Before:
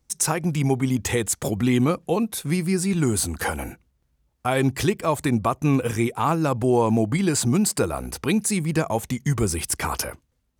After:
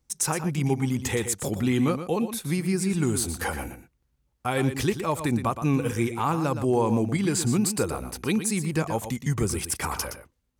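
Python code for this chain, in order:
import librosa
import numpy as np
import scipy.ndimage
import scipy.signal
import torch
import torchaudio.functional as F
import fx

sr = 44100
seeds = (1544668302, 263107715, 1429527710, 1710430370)

y = fx.notch(x, sr, hz=660.0, q=12.0)
y = y + 10.0 ** (-10.0 / 20.0) * np.pad(y, (int(118 * sr / 1000.0), 0))[:len(y)]
y = y * librosa.db_to_amplitude(-3.5)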